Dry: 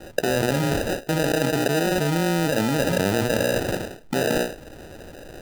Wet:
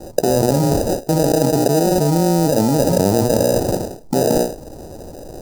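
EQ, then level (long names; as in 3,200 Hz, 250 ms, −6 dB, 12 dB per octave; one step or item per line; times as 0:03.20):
flat-topped bell 2,200 Hz −15.5 dB
+7.0 dB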